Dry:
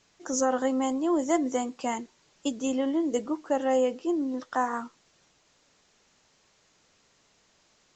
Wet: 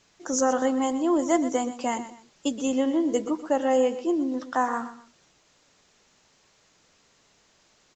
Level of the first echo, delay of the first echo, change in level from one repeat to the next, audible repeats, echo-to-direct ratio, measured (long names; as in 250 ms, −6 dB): −13.0 dB, 123 ms, −10.0 dB, 2, −12.5 dB